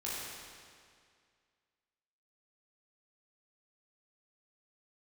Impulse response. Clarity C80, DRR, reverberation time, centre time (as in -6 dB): -1.0 dB, -8.0 dB, 2.1 s, 0.142 s